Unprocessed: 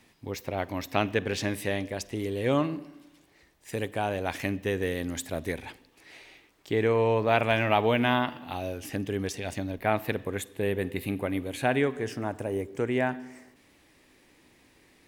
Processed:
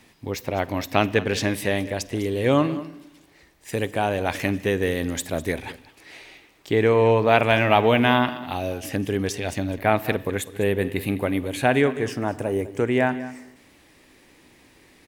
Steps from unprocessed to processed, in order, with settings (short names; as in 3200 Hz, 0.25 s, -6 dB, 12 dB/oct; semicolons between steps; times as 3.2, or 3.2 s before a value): echo 0.202 s -16.5 dB; gain +6 dB